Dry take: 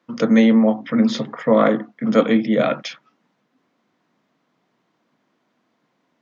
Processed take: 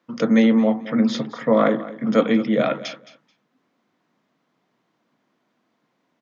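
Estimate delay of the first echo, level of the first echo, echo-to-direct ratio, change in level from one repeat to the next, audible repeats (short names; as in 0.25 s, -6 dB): 0.217 s, -16.5 dB, -16.5 dB, -15.5 dB, 2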